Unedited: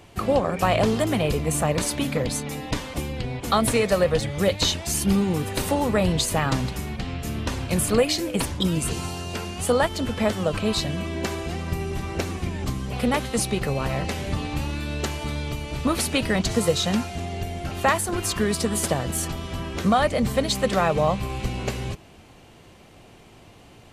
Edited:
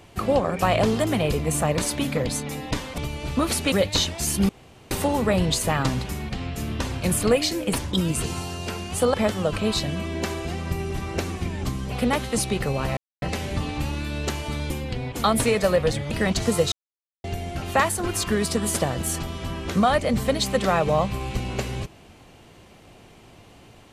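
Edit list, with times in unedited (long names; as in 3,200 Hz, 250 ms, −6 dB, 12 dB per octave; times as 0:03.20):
0:02.98–0:04.39: swap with 0:15.46–0:16.20
0:05.16–0:05.58: fill with room tone
0:09.81–0:10.15: remove
0:13.98: splice in silence 0.25 s
0:16.81–0:17.33: silence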